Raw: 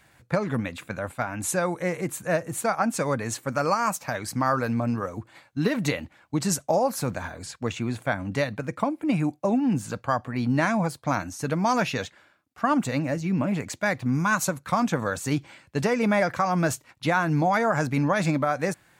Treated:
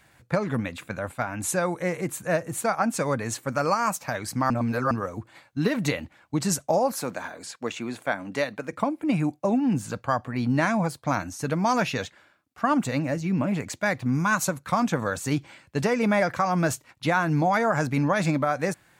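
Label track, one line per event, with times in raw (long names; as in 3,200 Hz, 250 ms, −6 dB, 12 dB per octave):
4.500000	4.910000	reverse
6.920000	8.730000	high-pass filter 250 Hz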